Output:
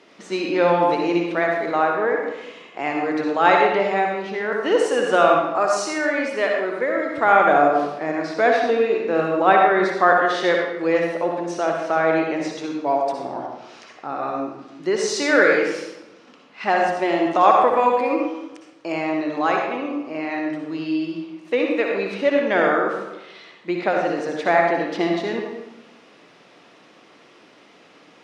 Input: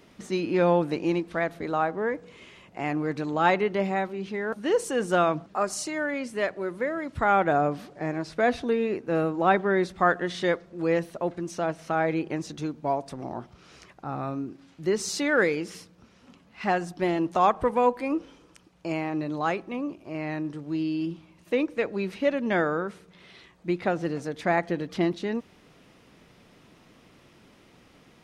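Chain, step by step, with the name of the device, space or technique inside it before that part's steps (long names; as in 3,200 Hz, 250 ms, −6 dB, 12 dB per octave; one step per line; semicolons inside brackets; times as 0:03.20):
supermarket ceiling speaker (band-pass filter 340–6,100 Hz; convolution reverb RT60 1.0 s, pre-delay 54 ms, DRR 0.5 dB)
level +5.5 dB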